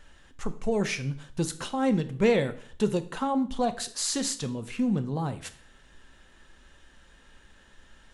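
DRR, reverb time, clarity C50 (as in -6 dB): 9.5 dB, 0.50 s, 15.5 dB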